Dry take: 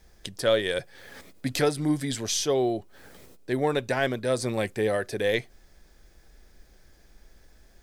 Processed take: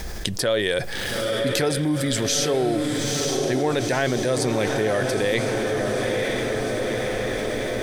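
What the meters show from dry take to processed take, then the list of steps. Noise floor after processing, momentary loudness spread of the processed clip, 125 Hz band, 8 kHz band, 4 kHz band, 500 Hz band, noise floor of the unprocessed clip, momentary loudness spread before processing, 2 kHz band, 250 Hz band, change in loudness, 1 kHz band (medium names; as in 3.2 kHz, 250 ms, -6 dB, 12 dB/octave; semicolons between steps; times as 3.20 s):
-29 dBFS, 4 LU, +7.0 dB, +7.5 dB, +7.0 dB, +5.0 dB, -57 dBFS, 11 LU, +7.0 dB, +6.0 dB, +4.0 dB, +5.5 dB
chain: on a send: echo that smears into a reverb 909 ms, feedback 60%, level -6.5 dB; on the sum: level flattener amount 70%; trim -1 dB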